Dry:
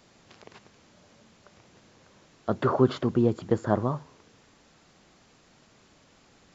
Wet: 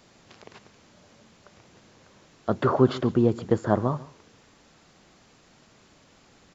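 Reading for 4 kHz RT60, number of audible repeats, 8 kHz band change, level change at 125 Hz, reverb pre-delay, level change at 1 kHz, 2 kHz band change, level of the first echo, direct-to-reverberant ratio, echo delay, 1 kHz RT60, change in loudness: none, 1, n/a, +2.0 dB, none, +2.0 dB, +2.0 dB, -20.0 dB, none, 0.142 s, none, +2.0 dB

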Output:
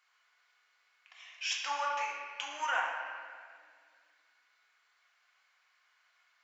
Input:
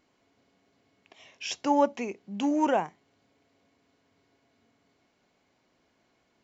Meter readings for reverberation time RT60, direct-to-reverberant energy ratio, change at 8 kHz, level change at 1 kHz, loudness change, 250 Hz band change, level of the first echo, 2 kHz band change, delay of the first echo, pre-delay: 1.9 s, -2.0 dB, n/a, -5.0 dB, -7.0 dB, -36.0 dB, none, +5.5 dB, none, 4 ms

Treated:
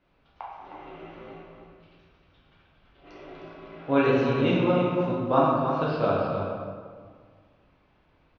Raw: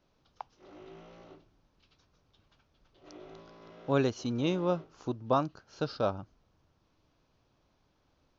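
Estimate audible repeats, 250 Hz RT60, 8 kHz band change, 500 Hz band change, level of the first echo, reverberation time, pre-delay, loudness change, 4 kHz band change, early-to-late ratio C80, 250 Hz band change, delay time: 1, 2.1 s, n/a, +8.0 dB, -9.0 dB, 1.8 s, 6 ms, +7.5 dB, +4.5 dB, 0.0 dB, +8.0 dB, 0.31 s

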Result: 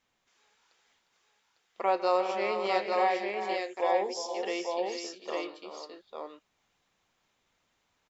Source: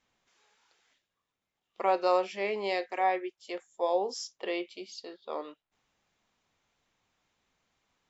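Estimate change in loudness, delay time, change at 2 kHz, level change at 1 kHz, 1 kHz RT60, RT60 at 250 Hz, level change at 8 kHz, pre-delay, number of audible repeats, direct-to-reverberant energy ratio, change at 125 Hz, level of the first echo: +1.0 dB, 0.154 s, +2.0 dB, +2.0 dB, none, none, n/a, none, 4, none, n/a, -16.0 dB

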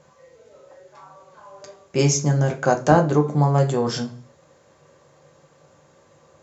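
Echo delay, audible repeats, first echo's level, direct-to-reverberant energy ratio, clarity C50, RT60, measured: none, none, none, 1.5 dB, 13.0 dB, 0.40 s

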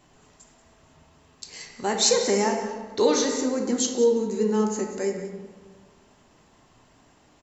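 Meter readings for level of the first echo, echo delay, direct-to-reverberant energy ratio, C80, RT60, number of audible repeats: -13.0 dB, 0.184 s, 2.0 dB, 6.0 dB, 1.5 s, 1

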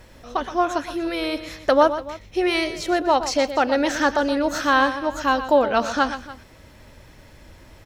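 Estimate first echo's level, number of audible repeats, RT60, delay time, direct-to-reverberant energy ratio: -11.5 dB, 2, none, 0.121 s, none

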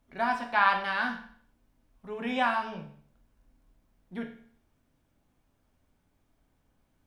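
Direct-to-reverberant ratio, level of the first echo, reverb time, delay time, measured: 3.0 dB, none, 0.55 s, none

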